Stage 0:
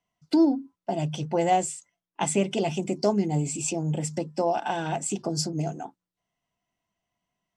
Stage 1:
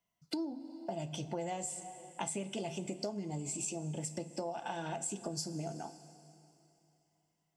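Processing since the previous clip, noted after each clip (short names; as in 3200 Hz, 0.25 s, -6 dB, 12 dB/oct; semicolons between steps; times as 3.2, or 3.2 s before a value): high shelf 8900 Hz +10 dB; two-slope reverb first 0.2 s, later 2.9 s, from -19 dB, DRR 8 dB; compressor 6:1, threshold -30 dBFS, peak gain reduction 14.5 dB; gain -5.5 dB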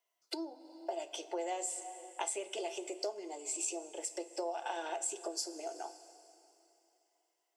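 Chebyshev high-pass 350 Hz, order 5; gain +2 dB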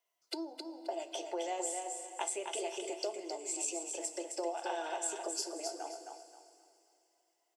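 feedback echo 0.265 s, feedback 28%, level -5.5 dB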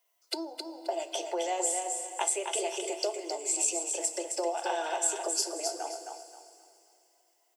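HPF 340 Hz 24 dB/oct; high shelf 10000 Hz +8 dB; gain +6 dB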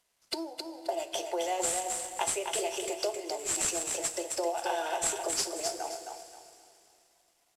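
CVSD 64 kbps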